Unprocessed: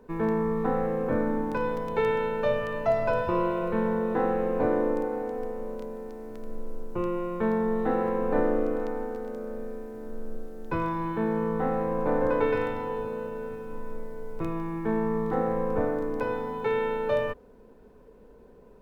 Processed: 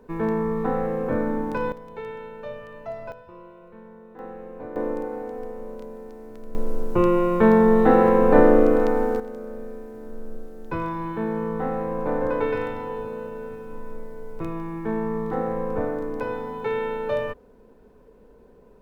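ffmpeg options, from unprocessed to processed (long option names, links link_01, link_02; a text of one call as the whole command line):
ffmpeg -i in.wav -af "asetnsamples=nb_out_samples=441:pad=0,asendcmd='1.72 volume volume -10dB;3.12 volume volume -19dB;4.19 volume volume -12dB;4.76 volume volume -1dB;6.55 volume volume 10.5dB;9.2 volume volume 0.5dB',volume=2dB" out.wav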